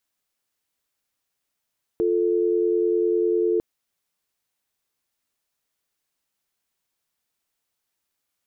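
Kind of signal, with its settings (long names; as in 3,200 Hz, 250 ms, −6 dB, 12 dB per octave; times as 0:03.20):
call progress tone dial tone, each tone −21 dBFS 1.60 s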